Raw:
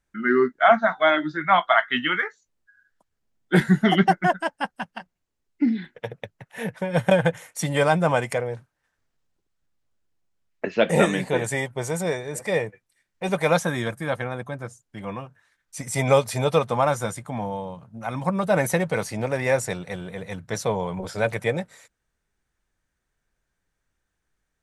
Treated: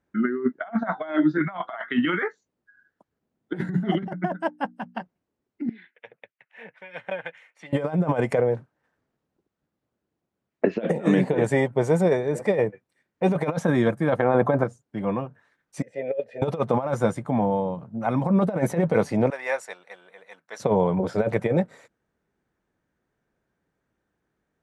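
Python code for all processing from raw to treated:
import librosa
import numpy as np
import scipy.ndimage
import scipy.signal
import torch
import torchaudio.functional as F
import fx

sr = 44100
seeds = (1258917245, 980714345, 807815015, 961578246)

y = fx.chain(x, sr, fx.notch(hz=4600.0, q=18.0),
    fx.band_squash(depth_pct=40), at=(1.38, 2.06))
y = fx.chain(y, sr, fx.hum_notches(base_hz=60, count=5),
    fx.upward_expand(threshold_db=-27.0, expansion=1.5), at=(3.57, 4.95))
y = fx.chain(y, sr, fx.bandpass_q(hz=2400.0, q=2.3),
    fx.harmonic_tremolo(hz=2.1, depth_pct=50, crossover_hz=1400.0), at=(5.69, 7.73))
y = fx.chain(y, sr, fx.peak_eq(hz=840.0, db=9.0, octaves=2.3),
    fx.env_flatten(amount_pct=50), at=(14.19, 14.64))
y = fx.chain(y, sr, fx.vowel_filter(vowel='e'),
    fx.high_shelf(hz=5800.0, db=-5.5), at=(15.82, 16.42))
y = fx.chain(y, sr, fx.highpass(hz=1100.0, slope=12),
    fx.upward_expand(threshold_db=-42.0, expansion=1.5), at=(19.3, 20.6))
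y = fx.over_compress(y, sr, threshold_db=-24.0, ratio=-0.5)
y = scipy.signal.sosfilt(scipy.signal.butter(2, 260.0, 'highpass', fs=sr, output='sos'), y)
y = fx.tilt_eq(y, sr, slope=-4.5)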